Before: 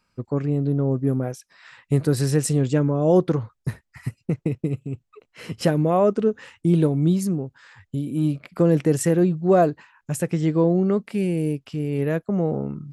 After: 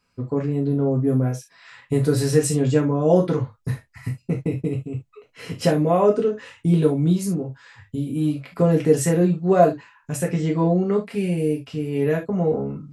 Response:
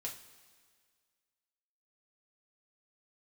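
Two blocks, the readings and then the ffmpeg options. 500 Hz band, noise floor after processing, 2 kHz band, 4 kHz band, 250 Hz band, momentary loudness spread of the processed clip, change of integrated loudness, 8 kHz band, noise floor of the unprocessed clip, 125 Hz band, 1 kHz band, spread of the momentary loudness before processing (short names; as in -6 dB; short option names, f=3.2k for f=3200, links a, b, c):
+2.0 dB, -65 dBFS, +1.5 dB, +2.0 dB, 0.0 dB, 13 LU, +1.0 dB, +2.0 dB, -75 dBFS, +0.5 dB, +2.0 dB, 14 LU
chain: -filter_complex "[1:a]atrim=start_sample=2205,atrim=end_sample=3528[a];[0:a][a]afir=irnorm=-1:irlink=0,volume=3.5dB"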